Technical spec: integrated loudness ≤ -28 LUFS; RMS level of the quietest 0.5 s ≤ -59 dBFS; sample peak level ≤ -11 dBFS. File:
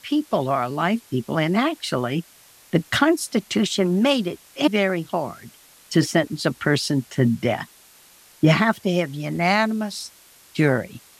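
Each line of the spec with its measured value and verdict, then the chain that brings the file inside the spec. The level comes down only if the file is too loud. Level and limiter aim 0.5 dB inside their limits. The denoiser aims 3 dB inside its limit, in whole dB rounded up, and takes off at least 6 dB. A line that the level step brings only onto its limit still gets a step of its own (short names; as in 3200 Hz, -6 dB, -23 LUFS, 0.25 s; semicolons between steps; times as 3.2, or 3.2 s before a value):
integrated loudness -22.0 LUFS: fail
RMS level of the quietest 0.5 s -51 dBFS: fail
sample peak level -5.0 dBFS: fail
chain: denoiser 6 dB, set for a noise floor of -51 dBFS; gain -6.5 dB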